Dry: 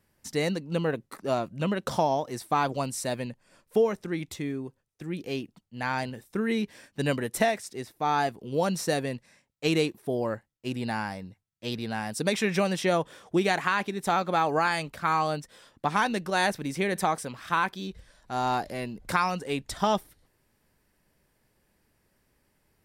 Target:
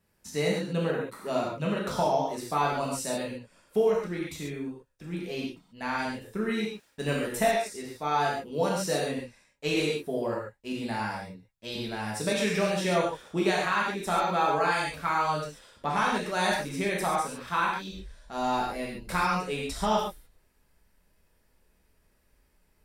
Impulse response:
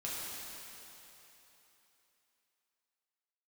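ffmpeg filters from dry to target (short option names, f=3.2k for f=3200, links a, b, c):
-filter_complex "[0:a]asubboost=boost=3.5:cutoff=59,asettb=1/sr,asplit=3[a][b][c];[a]atrim=end=6.594[d];[b]atrim=start=6.59:end=7.34,asetpts=PTS-STARTPTS,afade=t=in:d=0.004:c=qsin,afade=t=out:st=0.746:d=0.004:c=qsin,aeval=exprs='sgn(val(0))*max(abs(val(0))-0.00422,0)':c=same[e];[c]atrim=start=7.336[f];[d][e]acrossfade=d=0.004:c1=hsin:c2=qsin[g];[g][f]acrossfade=d=0.004:c1=qsin:c2=hsin[h];[1:a]atrim=start_sample=2205,atrim=end_sample=6615[i];[h][i]afir=irnorm=-1:irlink=0"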